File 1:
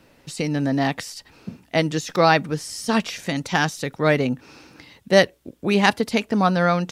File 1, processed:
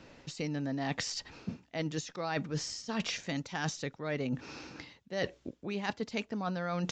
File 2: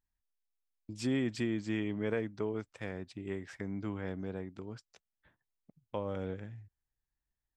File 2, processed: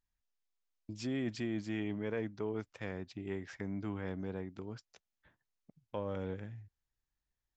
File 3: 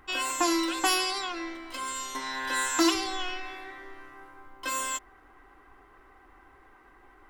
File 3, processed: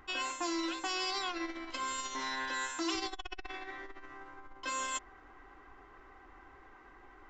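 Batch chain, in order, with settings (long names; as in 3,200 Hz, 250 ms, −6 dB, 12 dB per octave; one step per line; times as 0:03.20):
reversed playback
downward compressor 20 to 1, threshold −31 dBFS
reversed playback
downsampling to 16,000 Hz
saturating transformer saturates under 190 Hz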